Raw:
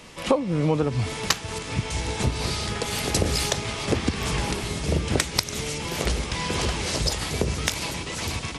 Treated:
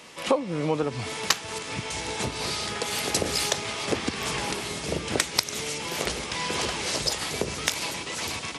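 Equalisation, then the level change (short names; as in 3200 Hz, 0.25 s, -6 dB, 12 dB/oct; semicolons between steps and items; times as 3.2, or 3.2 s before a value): HPF 350 Hz 6 dB/oct; 0.0 dB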